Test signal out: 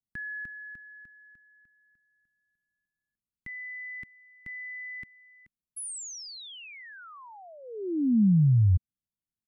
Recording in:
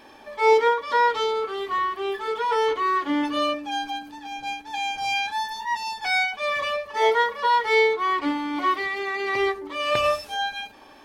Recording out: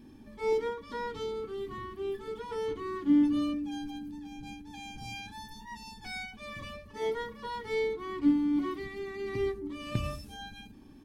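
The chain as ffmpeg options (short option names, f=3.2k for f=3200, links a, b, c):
-af "firequalizer=gain_entry='entry(210,0);entry(560,-28);entry(9100,-17)':delay=0.05:min_phase=1,volume=8.5dB"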